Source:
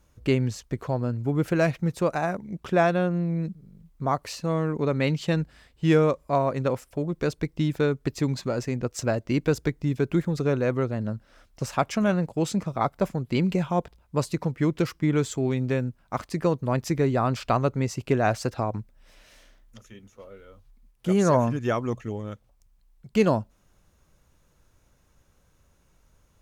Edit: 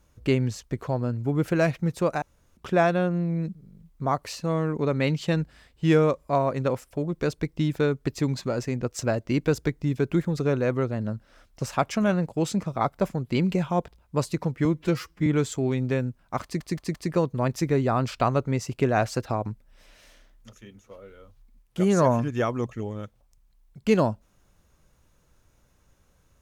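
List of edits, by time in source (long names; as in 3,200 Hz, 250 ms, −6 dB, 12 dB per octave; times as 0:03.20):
0:02.22–0:02.57: fill with room tone
0:14.65–0:15.06: time-stretch 1.5×
0:16.23: stutter 0.17 s, 4 plays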